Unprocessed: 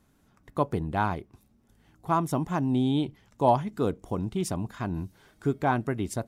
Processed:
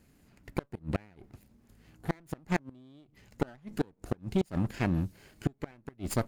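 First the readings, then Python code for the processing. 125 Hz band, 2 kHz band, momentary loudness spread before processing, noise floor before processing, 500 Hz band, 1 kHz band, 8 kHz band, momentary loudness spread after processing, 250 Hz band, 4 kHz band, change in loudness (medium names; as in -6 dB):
-4.0 dB, -4.0 dB, 11 LU, -65 dBFS, -8.0 dB, -14.0 dB, -4.5 dB, 11 LU, -5.5 dB, -6.5 dB, -6.5 dB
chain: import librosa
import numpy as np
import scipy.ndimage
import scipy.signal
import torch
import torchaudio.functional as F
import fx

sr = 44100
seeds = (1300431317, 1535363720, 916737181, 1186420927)

y = fx.lower_of_two(x, sr, delay_ms=0.44)
y = fx.gate_flip(y, sr, shuts_db=-19.0, range_db=-32)
y = y * librosa.db_to_amplitude(3.0)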